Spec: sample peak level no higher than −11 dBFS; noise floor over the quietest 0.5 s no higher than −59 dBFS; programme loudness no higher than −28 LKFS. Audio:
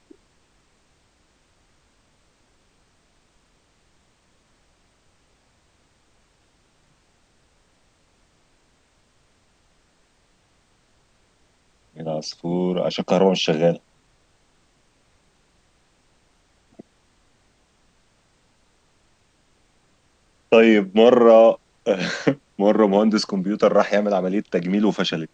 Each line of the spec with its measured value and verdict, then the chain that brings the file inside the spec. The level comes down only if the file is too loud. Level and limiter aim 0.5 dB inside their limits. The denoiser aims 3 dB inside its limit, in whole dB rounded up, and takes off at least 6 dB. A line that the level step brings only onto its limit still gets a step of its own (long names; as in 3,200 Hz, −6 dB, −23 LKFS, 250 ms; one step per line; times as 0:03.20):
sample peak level −2.5 dBFS: out of spec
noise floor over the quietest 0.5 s −62 dBFS: in spec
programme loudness −18.5 LKFS: out of spec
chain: level −10 dB